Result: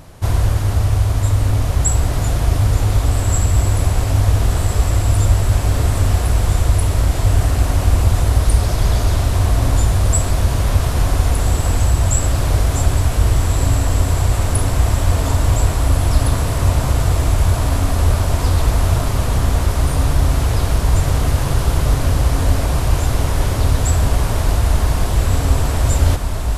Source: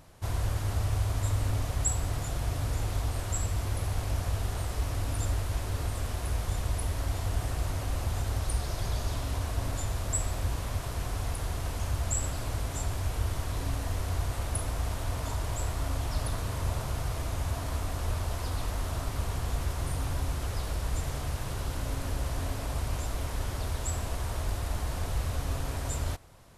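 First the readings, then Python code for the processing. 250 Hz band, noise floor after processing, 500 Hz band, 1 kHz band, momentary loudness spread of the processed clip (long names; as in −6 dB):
+16.0 dB, −20 dBFS, +14.5 dB, +13.5 dB, 2 LU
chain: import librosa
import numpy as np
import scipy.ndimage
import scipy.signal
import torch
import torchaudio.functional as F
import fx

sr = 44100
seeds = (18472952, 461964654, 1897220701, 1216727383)

p1 = fx.low_shelf(x, sr, hz=490.0, db=4.0)
p2 = fx.rider(p1, sr, range_db=10, speed_s=0.5)
p3 = p1 + F.gain(torch.from_numpy(p2), 3.0).numpy()
p4 = fx.echo_diffused(p3, sr, ms=1629, feedback_pct=66, wet_db=-6.0)
y = F.gain(torch.from_numpy(p4), 3.5).numpy()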